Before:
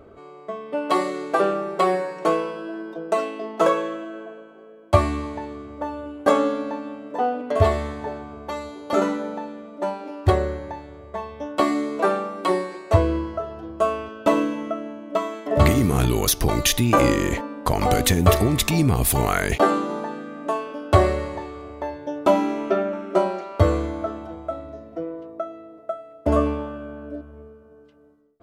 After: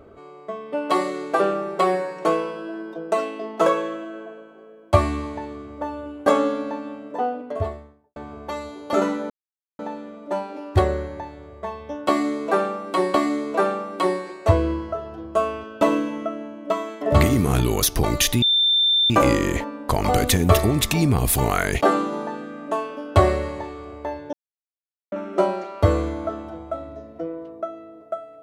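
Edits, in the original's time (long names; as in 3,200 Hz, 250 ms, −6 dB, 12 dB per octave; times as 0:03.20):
0:06.93–0:08.16: fade out and dull
0:09.30: splice in silence 0.49 s
0:11.59–0:12.65: repeat, 2 plays
0:16.87: insert tone 3,570 Hz −15 dBFS 0.68 s
0:22.10–0:22.89: silence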